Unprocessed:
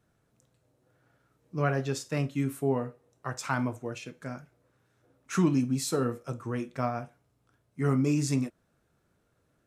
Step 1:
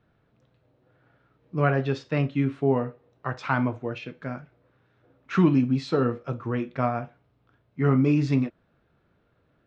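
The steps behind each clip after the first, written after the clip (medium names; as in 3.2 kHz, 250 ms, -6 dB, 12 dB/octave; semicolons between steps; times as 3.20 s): low-pass 3.8 kHz 24 dB/octave; trim +5 dB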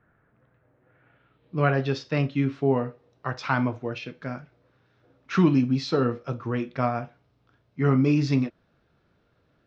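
low-pass sweep 1.7 kHz -> 5.5 kHz, 0.72–1.86 s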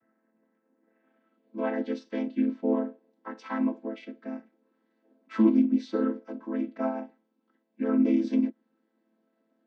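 vocoder on a held chord minor triad, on A3; trim -2 dB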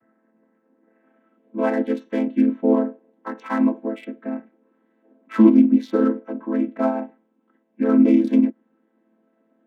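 local Wiener filter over 9 samples; trim +8.5 dB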